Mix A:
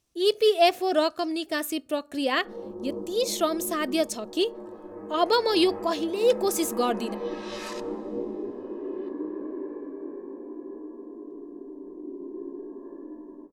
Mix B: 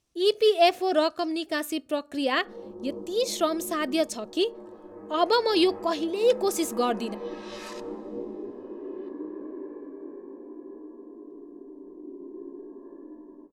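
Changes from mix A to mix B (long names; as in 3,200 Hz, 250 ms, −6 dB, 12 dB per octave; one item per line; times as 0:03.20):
speech: add high-shelf EQ 11,000 Hz −8 dB
background −3.5 dB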